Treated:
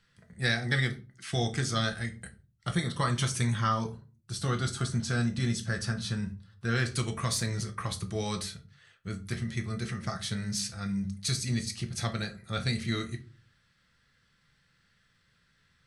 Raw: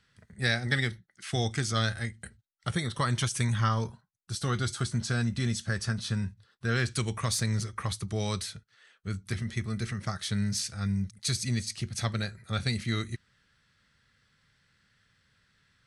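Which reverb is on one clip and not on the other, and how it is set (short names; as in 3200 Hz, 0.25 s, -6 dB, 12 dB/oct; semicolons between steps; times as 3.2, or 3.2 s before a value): shoebox room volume 190 m³, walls furnished, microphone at 0.81 m; gain -1.5 dB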